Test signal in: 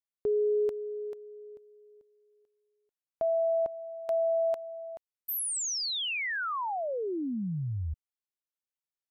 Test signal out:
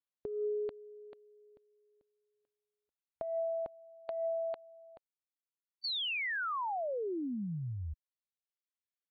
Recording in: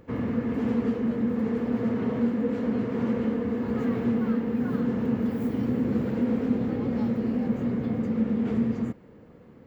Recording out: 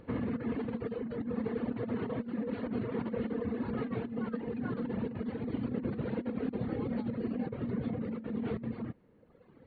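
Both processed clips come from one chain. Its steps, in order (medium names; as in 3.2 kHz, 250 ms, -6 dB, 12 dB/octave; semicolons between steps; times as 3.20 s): reverb removal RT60 1.6 s; compressor with a negative ratio -30 dBFS, ratio -0.5; trim -3.5 dB; AC-3 32 kbps 32 kHz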